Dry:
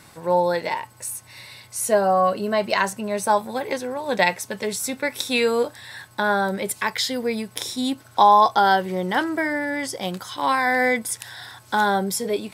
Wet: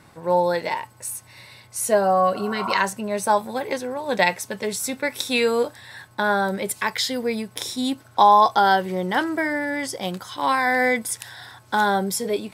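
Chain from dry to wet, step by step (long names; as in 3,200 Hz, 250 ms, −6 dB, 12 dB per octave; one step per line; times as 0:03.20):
healed spectral selection 0:02.38–0:02.76, 590–1,500 Hz both
one half of a high-frequency compander decoder only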